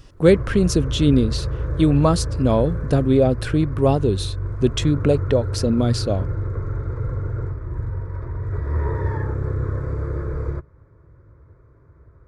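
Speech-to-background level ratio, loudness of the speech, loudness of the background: 7.0 dB, −20.0 LKFS, −27.0 LKFS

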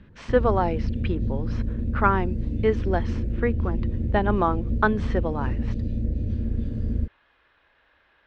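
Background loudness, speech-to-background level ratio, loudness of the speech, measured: −28.5 LKFS, 2.0 dB, −26.5 LKFS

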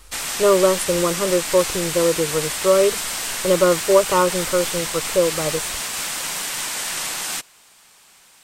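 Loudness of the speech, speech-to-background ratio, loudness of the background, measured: −20.0 LKFS, 4.0 dB, −24.0 LKFS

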